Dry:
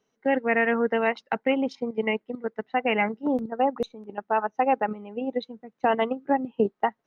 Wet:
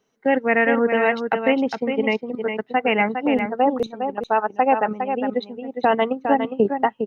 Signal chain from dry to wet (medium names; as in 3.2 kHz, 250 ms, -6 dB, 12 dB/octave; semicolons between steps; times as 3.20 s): delay 408 ms -7 dB; trim +4.5 dB